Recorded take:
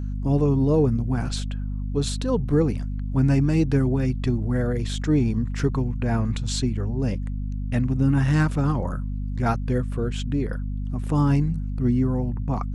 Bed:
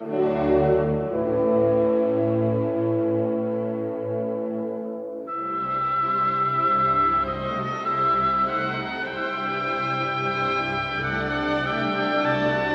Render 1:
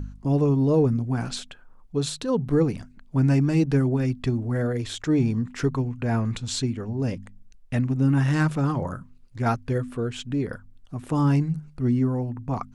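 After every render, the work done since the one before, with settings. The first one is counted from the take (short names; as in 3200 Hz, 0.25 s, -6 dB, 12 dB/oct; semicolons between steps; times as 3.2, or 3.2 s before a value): de-hum 50 Hz, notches 5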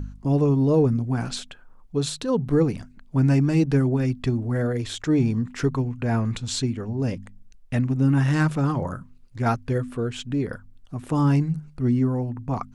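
gain +1 dB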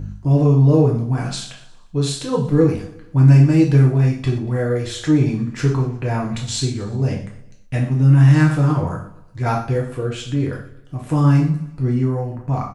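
feedback echo 0.118 s, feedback 46%, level -17 dB; non-linear reverb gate 0.15 s falling, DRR -2 dB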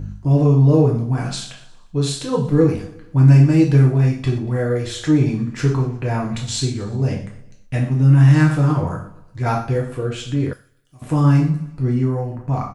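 10.53–11.02 pre-emphasis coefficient 0.9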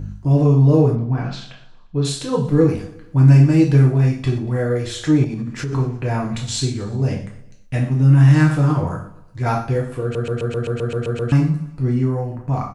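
0.95–2.05 air absorption 200 m; 5.24–5.73 compressor, threshold -21 dBFS; 10.02 stutter in place 0.13 s, 10 plays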